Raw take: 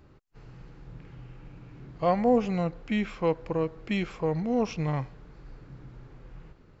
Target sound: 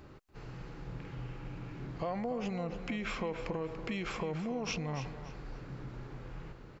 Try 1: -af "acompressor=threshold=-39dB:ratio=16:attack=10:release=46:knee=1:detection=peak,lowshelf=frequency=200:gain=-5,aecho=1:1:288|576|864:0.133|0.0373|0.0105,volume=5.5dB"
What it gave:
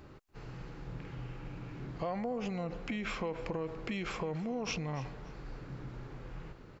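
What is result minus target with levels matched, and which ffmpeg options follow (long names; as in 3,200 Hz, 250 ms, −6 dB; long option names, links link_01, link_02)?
echo-to-direct −6.5 dB
-af "acompressor=threshold=-39dB:ratio=16:attack=10:release=46:knee=1:detection=peak,lowshelf=frequency=200:gain=-5,aecho=1:1:288|576|864:0.282|0.0789|0.0221,volume=5.5dB"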